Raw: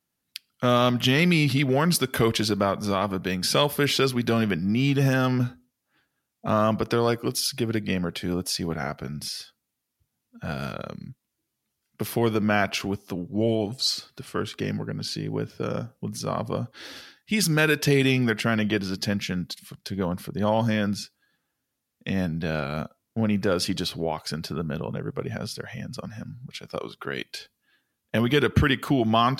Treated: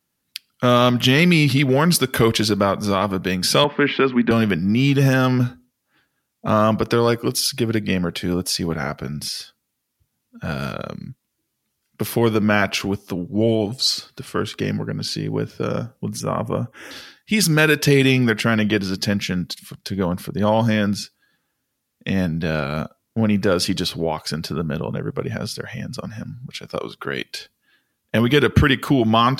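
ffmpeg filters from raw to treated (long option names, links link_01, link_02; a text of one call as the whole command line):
ffmpeg -i in.wav -filter_complex "[0:a]asettb=1/sr,asplit=3[link_01][link_02][link_03];[link_01]atrim=end=3.644[link_04];[link_02]atrim=start=3.64:end=4.31,asetpts=PTS-STARTPTS,afade=type=in:duration=0.004:curve=qsin,afade=type=out:start_time=0.666:duration=0.004:curve=qsin,highpass=frequency=170:width=0.5412,highpass=frequency=170:width=1.3066,equalizer=frequency=230:width_type=q:width=4:gain=5,equalizer=frequency=520:width_type=q:width=4:gain=-3,equalizer=frequency=970:width_type=q:width=4:gain=4,equalizer=frequency=1800:width_type=q:width=4:gain=4,lowpass=frequency=2700:width=0.5412,lowpass=frequency=2700:width=1.3066[link_05];[link_03]atrim=start=4.306[link_06];[link_04][link_05]acrossfade=duration=0.004:curve1=hsin:curve2=qsin[link_07];[link_07][link_06]acrossfade=duration=0.004:curve1=qsin:curve2=hsin,asettb=1/sr,asplit=3[link_08][link_09][link_10];[link_08]atrim=end=16.204[link_11];[link_09]atrim=start=16.2:end=16.91,asetpts=PTS-STARTPTS,afade=type=in:duration=0.004:curve=qsin,afade=type=out:start_time=0.706:duration=0.004:curve=qsin,asuperstop=centerf=4200:order=4:qfactor=1.4[link_12];[link_10]atrim=start=16.906[link_13];[link_11][link_12]acrossfade=duration=0.004:curve1=hsin:curve2=qsin[link_14];[link_14][link_13]acrossfade=duration=0.004:curve1=qsin:curve2=hsin,bandreject=frequency=710:width=14,volume=5.5dB" out.wav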